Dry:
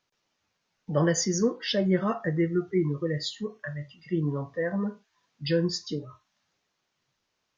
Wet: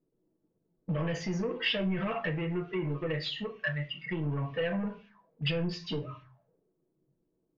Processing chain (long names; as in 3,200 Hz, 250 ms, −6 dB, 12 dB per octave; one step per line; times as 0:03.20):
0:02.12–0:04.25: parametric band 98 Hz −6.5 dB 2.1 octaves
brickwall limiter −23 dBFS, peak gain reduction 11.5 dB
downward compressor 3 to 1, threshold −32 dBFS, peak gain reduction 5 dB
soft clipping −32.5 dBFS, distortion −14 dB
convolution reverb RT60 0.35 s, pre-delay 4 ms, DRR 2 dB
envelope-controlled low-pass 320–2,700 Hz up, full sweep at −41 dBFS
level +2 dB